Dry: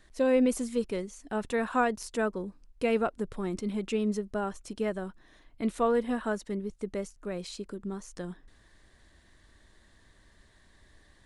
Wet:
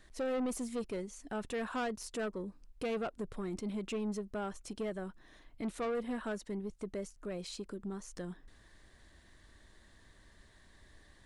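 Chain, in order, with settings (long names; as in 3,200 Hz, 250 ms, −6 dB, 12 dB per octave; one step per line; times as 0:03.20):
in parallel at −2.5 dB: downward compressor, threshold −42 dBFS, peak gain reduction 20 dB
on the sum: soft clipping −25.5 dBFS, distortion −11 dB
level −5.5 dB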